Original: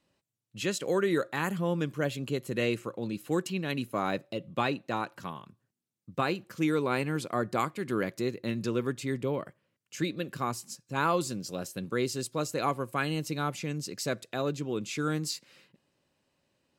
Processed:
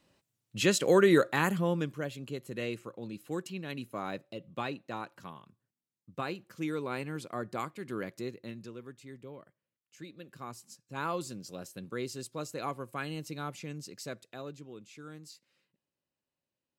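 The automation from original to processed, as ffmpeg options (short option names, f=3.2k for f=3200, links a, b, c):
-af "volume=14dB,afade=t=out:st=1.15:d=0.91:silence=0.251189,afade=t=out:st=8.24:d=0.5:silence=0.354813,afade=t=in:st=10.07:d=1.03:silence=0.354813,afade=t=out:st=13.72:d=1.16:silence=0.316228"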